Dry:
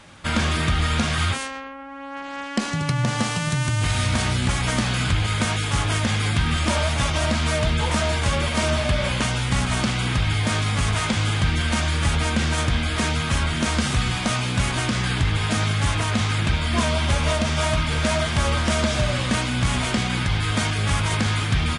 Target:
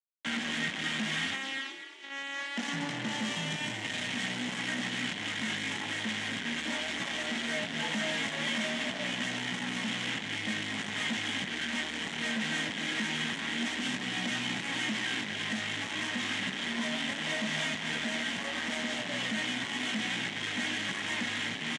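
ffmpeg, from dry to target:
-filter_complex "[0:a]lowshelf=f=360:g=7.5,aecho=1:1:3.7:0.45,dynaudnorm=f=470:g=9:m=3.76,flanger=delay=16:depth=2.9:speed=0.43,alimiter=limit=0.224:level=0:latency=1:release=109,acrusher=bits=3:mix=0:aa=0.5,asoftclip=type=tanh:threshold=0.0376,highpass=f=180:w=0.5412,highpass=f=180:w=1.3066,equalizer=f=360:t=q:w=4:g=-7,equalizer=f=530:t=q:w=4:g=-5,equalizer=f=1200:t=q:w=4:g=-6,equalizer=f=1900:t=q:w=4:g=10,equalizer=f=3100:t=q:w=4:g=8,equalizer=f=4700:t=q:w=4:g=-5,lowpass=f=7900:w=0.5412,lowpass=f=7900:w=1.3066,asplit=6[s0][s1][s2][s3][s4][s5];[s1]adelay=238,afreqshift=44,volume=0.299[s6];[s2]adelay=476,afreqshift=88,volume=0.143[s7];[s3]adelay=714,afreqshift=132,volume=0.0684[s8];[s4]adelay=952,afreqshift=176,volume=0.0331[s9];[s5]adelay=1190,afreqshift=220,volume=0.0158[s10];[s0][s6][s7][s8][s9][s10]amix=inputs=6:normalize=0"

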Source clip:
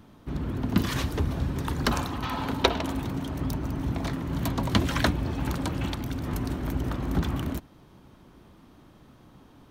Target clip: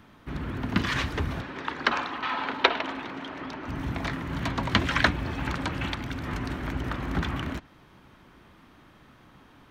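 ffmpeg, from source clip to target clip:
-filter_complex "[0:a]equalizer=f=1900:t=o:w=1.9:g=10.5,acrossover=split=7700[s0][s1];[s1]acompressor=threshold=0.00158:ratio=4:attack=1:release=60[s2];[s0][s2]amix=inputs=2:normalize=0,asettb=1/sr,asplit=3[s3][s4][s5];[s3]atrim=end=1.414[s6];[s4]atrim=start=1.41:end=3.68,asetpts=PTS-STARTPTS,afade=t=in:d=0.004:c=qsin,afade=t=out:st=2.266:d=0.004:c=qsin,acrossover=split=240 5400:gain=0.1 1 0.158[s7][s8][s9];[s7][s8][s9]amix=inputs=3:normalize=0[s10];[s5]atrim=start=3.676[s11];[s6][s10]acrossfade=d=0.004:c1=hsin:c2=qsin[s12];[s12][s11]acrossfade=d=0.004:c1=qsin:c2=hsin,volume=0.708"

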